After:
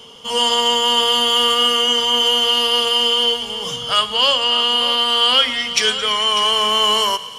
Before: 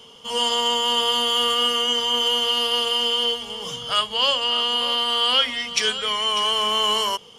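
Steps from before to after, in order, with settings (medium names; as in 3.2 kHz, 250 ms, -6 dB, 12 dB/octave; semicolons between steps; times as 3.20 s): in parallel at -8 dB: saturation -16 dBFS, distortion -17 dB; on the sum: thinning echo 110 ms, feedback 78%, high-pass 690 Hz, level -17 dB; trim +2.5 dB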